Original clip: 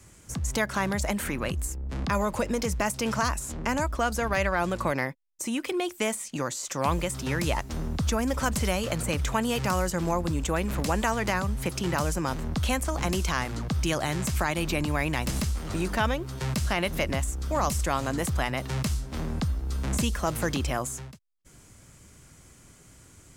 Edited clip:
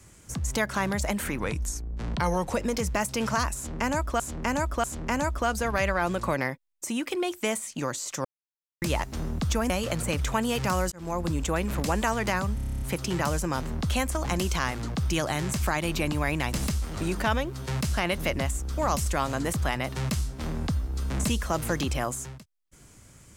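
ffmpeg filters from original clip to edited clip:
ffmpeg -i in.wav -filter_complex "[0:a]asplit=18[link_01][link_02][link_03][link_04][link_05][link_06][link_07][link_08][link_09][link_10][link_11][link_12][link_13][link_14][link_15][link_16][link_17][link_18];[link_01]atrim=end=1.394[link_19];[link_02]atrim=start=1.39:end=2.38,asetpts=PTS-STARTPTS,asetrate=38367,aresample=44100[link_20];[link_03]atrim=start=2.376:end=4.052[link_21];[link_04]atrim=start=3.408:end=4.052[link_22];[link_05]atrim=start=3.408:end=6.82,asetpts=PTS-STARTPTS,afade=type=out:start_time=3.408:duration=0.004:curve=hsin[link_23];[link_06]atrim=start=6.82:end=7.39,asetpts=PTS-STARTPTS,volume=0[link_24];[link_07]atrim=start=7.39:end=8.272,asetpts=PTS-STARTPTS,afade=type=in:duration=0.004:curve=hsin[link_25];[link_08]atrim=start=8.698:end=9.92,asetpts=PTS-STARTPTS,afade=type=out:start_time=1.218:duration=0.004:curve=hsin[link_26];[link_09]atrim=start=9.92:end=11.582,asetpts=PTS-STARTPTS,afade=type=in:duration=0.33[link_27];[link_10]atrim=start=11.548:end=11.582[link_28];[link_11]atrim=start=11.548:end=11.582[link_29];[link_12]atrim=start=11.548:end=11.582[link_30];[link_13]atrim=start=11.548:end=11.582[link_31];[link_14]atrim=start=11.548:end=11.582[link_32];[link_15]atrim=start=11.548:end=11.582[link_33];[link_16]atrim=start=11.548:end=11.582[link_34];[link_17]atrim=start=11.548:end=11.582[link_35];[link_18]atrim=start=11.548[link_36];[link_19][link_20]acrossfade=duration=0.004:curve1=hsin:curve2=hsin[link_37];[link_37][link_21]acrossfade=duration=0.004:curve1=hsin:curve2=hsin[link_38];[link_38][link_22]acrossfade=duration=0.004:curve1=hsin:curve2=hsin[link_39];[link_23][link_24][link_25]concat=n=3:v=0:a=1[link_40];[link_39][link_40]acrossfade=duration=0.004:curve1=hsin:curve2=hsin[link_41];[link_26][link_27]concat=n=2:v=0:a=1[link_42];[link_41][link_42]acrossfade=duration=0.004:curve1=hsin:curve2=hsin[link_43];[link_43][link_28]acrossfade=duration=0.004:curve1=hsin:curve2=hsin[link_44];[link_44][link_29]acrossfade=duration=0.004:curve1=hsin:curve2=hsin[link_45];[link_45][link_30]acrossfade=duration=0.004:curve1=hsin:curve2=hsin[link_46];[link_46][link_31]acrossfade=duration=0.004:curve1=hsin:curve2=hsin[link_47];[link_47][link_32]acrossfade=duration=0.004:curve1=hsin:curve2=hsin[link_48];[link_48][link_33]acrossfade=duration=0.004:curve1=hsin:curve2=hsin[link_49];[link_49][link_34]acrossfade=duration=0.004:curve1=hsin:curve2=hsin[link_50];[link_50][link_35]acrossfade=duration=0.004:curve1=hsin:curve2=hsin[link_51];[link_51][link_36]acrossfade=duration=0.004:curve1=hsin:curve2=hsin" out.wav

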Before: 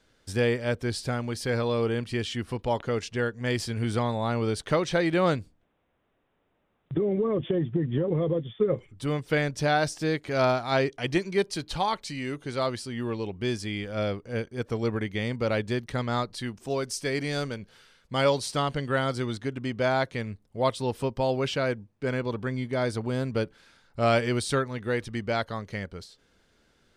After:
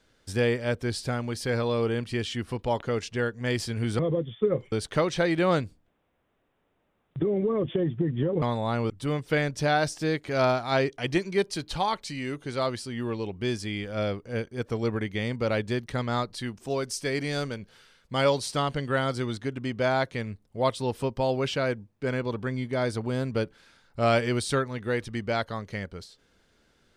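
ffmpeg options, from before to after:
ffmpeg -i in.wav -filter_complex "[0:a]asplit=5[link_01][link_02][link_03][link_04][link_05];[link_01]atrim=end=3.992[link_06];[link_02]atrim=start=8.168:end=8.902[link_07];[link_03]atrim=start=4.468:end=8.172[link_08];[link_04]atrim=start=3.988:end=4.472[link_09];[link_05]atrim=start=8.898[link_10];[link_06][link_07]acrossfade=duration=0.004:curve1=hsin:curve2=hsin[link_11];[link_11][link_08]acrossfade=duration=0.004:curve1=hsin:curve2=hsin[link_12];[link_12][link_09]acrossfade=duration=0.004:curve1=hsin:curve2=hsin[link_13];[link_13][link_10]acrossfade=duration=0.004:curve1=hsin:curve2=hsin" out.wav

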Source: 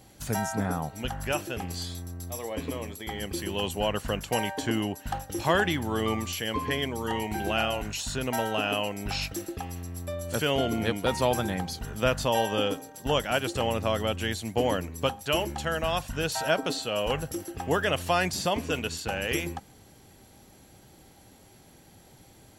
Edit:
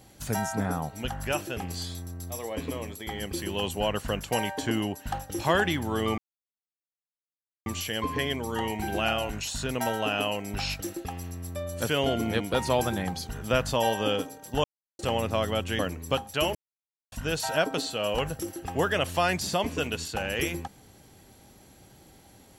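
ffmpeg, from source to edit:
ffmpeg -i in.wav -filter_complex "[0:a]asplit=7[link_01][link_02][link_03][link_04][link_05][link_06][link_07];[link_01]atrim=end=6.18,asetpts=PTS-STARTPTS,afade=type=out:start_time=6.176:duration=0.004:curve=hsin,apad=pad_dur=1.48[link_08];[link_02]atrim=start=6.18:end=13.16,asetpts=PTS-STARTPTS,afade=type=in:duration=0.004:curve=hsin,afade=type=out:start_time=6.976:duration=0.004:curve=hsin[link_09];[link_03]atrim=start=13.16:end=13.51,asetpts=PTS-STARTPTS,volume=0[link_10];[link_04]atrim=start=13.51:end=14.312,asetpts=PTS-STARTPTS,afade=type=in:duration=0.004:curve=hsin[link_11];[link_05]atrim=start=14.708:end=15.47,asetpts=PTS-STARTPTS,afade=type=out:start_time=0.758:duration=0.004:curve=hsin[link_12];[link_06]atrim=start=15.47:end=16.04,asetpts=PTS-STARTPTS,volume=0[link_13];[link_07]atrim=start=16.04,asetpts=PTS-STARTPTS,afade=type=in:duration=0.004:curve=hsin[link_14];[link_08][link_09][link_10][link_11]concat=n=4:v=0:a=1[link_15];[link_12][link_13][link_14]concat=n=3:v=0:a=1[link_16];[link_15][link_16]acrossfade=duration=0.004:curve1=hsin:curve2=hsin" out.wav

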